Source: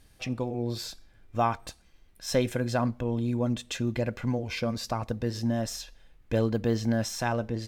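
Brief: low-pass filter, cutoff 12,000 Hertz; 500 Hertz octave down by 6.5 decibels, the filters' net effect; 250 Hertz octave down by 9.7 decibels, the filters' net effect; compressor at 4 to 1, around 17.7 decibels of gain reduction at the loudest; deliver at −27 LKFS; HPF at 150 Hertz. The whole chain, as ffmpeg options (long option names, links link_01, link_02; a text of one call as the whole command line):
ffmpeg -i in.wav -af "highpass=150,lowpass=12000,equalizer=frequency=250:width_type=o:gain=-9,equalizer=frequency=500:width_type=o:gain=-5.5,acompressor=threshold=-45dB:ratio=4,volume=20dB" out.wav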